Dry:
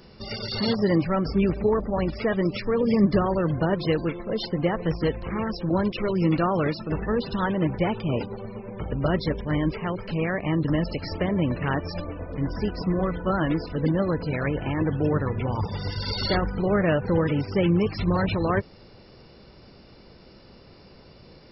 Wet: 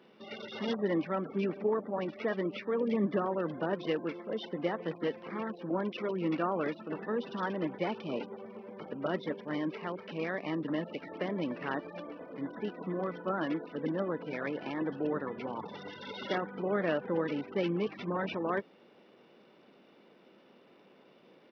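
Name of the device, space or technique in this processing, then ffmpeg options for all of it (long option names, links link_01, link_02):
Bluetooth headset: -af "highpass=frequency=210:width=0.5412,highpass=frequency=210:width=1.3066,aresample=8000,aresample=44100,volume=-7.5dB" -ar 44100 -c:a sbc -b:a 64k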